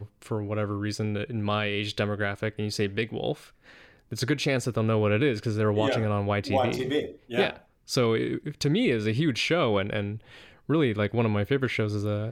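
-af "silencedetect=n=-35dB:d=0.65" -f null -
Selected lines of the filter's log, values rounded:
silence_start: 3.34
silence_end: 4.12 | silence_duration: 0.78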